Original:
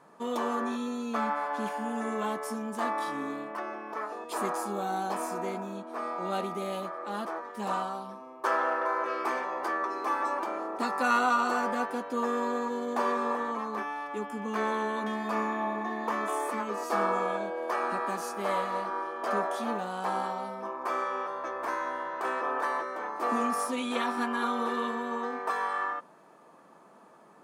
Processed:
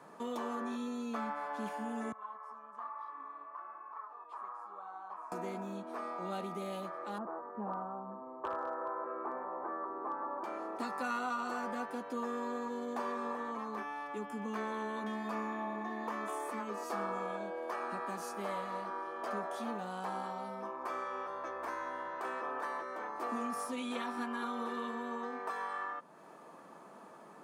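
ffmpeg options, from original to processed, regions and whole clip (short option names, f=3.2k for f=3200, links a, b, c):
-filter_complex "[0:a]asettb=1/sr,asplit=3[a][b][c];[a]atrim=end=2.124[d];[b]atrim=start=2.12:end=5.32,asetpts=PTS-STARTPTS,afade=t=in:d=0.004:c=qsin,afade=t=out:st=3.196:d=0.004:c=qsin,bandpass=f=1.1k:t=q:w=5.1,flanger=delay=0.7:depth=7.3:regen=51:speed=1.1:shape=triangular[e];[c]atrim=start=5.316[f];[d][e]acrossfade=d=0.004:c1=hsin:c2=qsin[g];[g][f]acrossfade=d=0.004:c1=qsin:c2=hsin,asettb=1/sr,asplit=3[h][i][j];[h]atrim=end=7.184[k];[i]atrim=start=7.18:end=10.44,asetpts=PTS-STARTPTS,afade=t=in:d=0.004:c=qsin,afade=t=out:st=3.256:d=0.004:c=qsin,lowpass=f=1.3k:w=0.5412,lowpass=f=1.3k:w=1.3066,volume=21dB,asoftclip=hard,volume=-21dB[l];[j]atrim=start=10.436[m];[k][l]acrossfade=d=0.004:c1=hsin:c2=qsin[n];[n][m]acrossfade=d=0.004:c1=qsin:c2=hsin,highpass=71,acrossover=split=140[o][p];[p]acompressor=threshold=-47dB:ratio=2[q];[o][q]amix=inputs=2:normalize=0,volume=2dB"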